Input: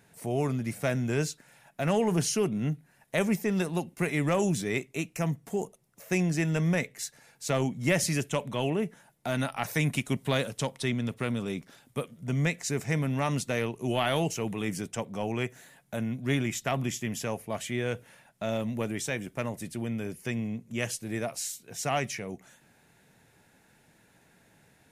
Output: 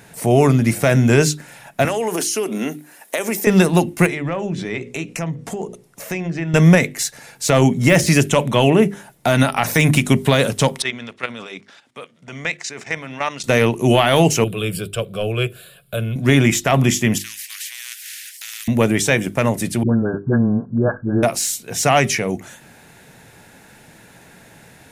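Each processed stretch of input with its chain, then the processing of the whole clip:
0:01.85–0:03.47: high-pass filter 270 Hz 24 dB per octave + high-shelf EQ 6,700 Hz +10 dB + downward compressor 16 to 1, threshold −33 dBFS
0:04.06–0:06.54: mains-hum notches 60/120/180/240/300/360/420/480/540 Hz + treble cut that deepens with the level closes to 2,900 Hz, closed at −23.5 dBFS + downward compressor 3 to 1, threshold −40 dBFS
0:10.82–0:13.44: high-pass filter 1,300 Hz 6 dB per octave + output level in coarse steps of 12 dB + high-frequency loss of the air 110 metres
0:14.44–0:16.16: parametric band 900 Hz −8.5 dB 1.5 octaves + phaser with its sweep stopped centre 1,300 Hz, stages 8
0:17.18–0:18.68: Chebyshev high-pass with heavy ripple 1,800 Hz, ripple 3 dB + downward compressor 1.5 to 1, threshold −52 dBFS + every bin compressed towards the loudest bin 4 to 1
0:19.83–0:21.23: linear-phase brick-wall low-pass 1,700 Hz + all-pass dispersion highs, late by 70 ms, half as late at 420 Hz
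whole clip: de-essing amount 65%; mains-hum notches 50/100/150/200/250/300/350/400 Hz; boost into a limiter +17.5 dB; level −1 dB

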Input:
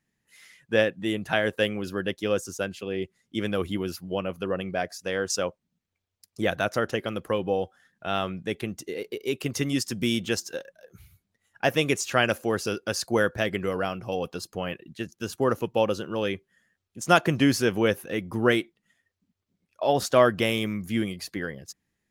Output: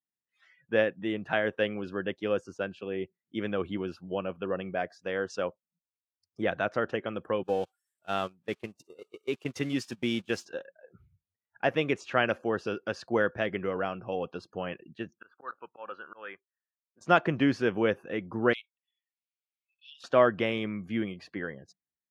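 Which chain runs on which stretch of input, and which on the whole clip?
0:07.43–0:10.45: spike at every zero crossing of −26.5 dBFS + noise gate −30 dBFS, range −24 dB + high-shelf EQ 7,100 Hz +11.5 dB
0:15.18–0:17.01: resonant band-pass 1,400 Hz, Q 2.5 + volume swells 153 ms + leveller curve on the samples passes 1
0:18.53–0:20.04: Butterworth high-pass 2,200 Hz 48 dB per octave + upward compression, threshold −46 dBFS + flanger swept by the level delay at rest 6.9 ms, full sweep at −33.5 dBFS
whole clip: low-pass filter 2,500 Hz 12 dB per octave; noise reduction from a noise print of the clip's start 22 dB; high-pass filter 160 Hz 6 dB per octave; level −2.5 dB

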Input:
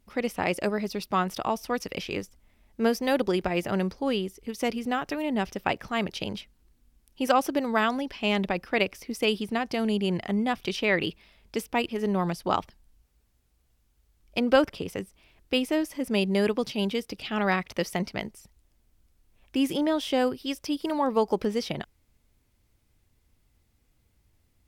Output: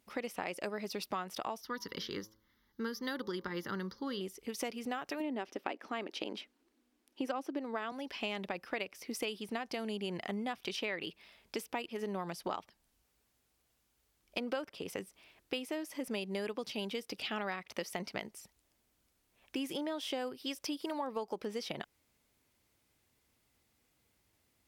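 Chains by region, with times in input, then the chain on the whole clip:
0:01.61–0:04.21: phaser with its sweep stopped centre 2,500 Hz, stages 6 + hum removal 108.3 Hz, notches 11
0:05.20–0:07.92: low-pass filter 3,800 Hz 6 dB per octave + low shelf with overshoot 190 Hz −13 dB, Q 3
whole clip: high-pass filter 360 Hz 6 dB per octave; downward compressor 6 to 1, threshold −35 dBFS

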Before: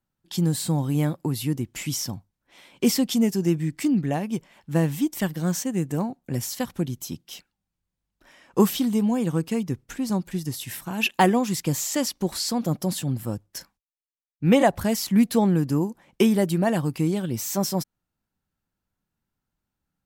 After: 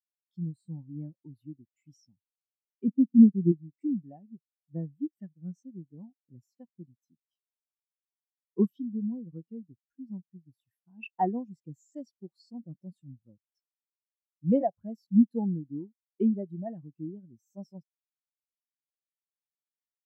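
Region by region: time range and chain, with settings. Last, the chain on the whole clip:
0:02.88–0:03.52: low-pass filter 1,200 Hz + low-shelf EQ 180 Hz +12 dB
whole clip: low-shelf EQ 140 Hz −7 dB; every bin expanded away from the loudest bin 2.5 to 1; level −2.5 dB

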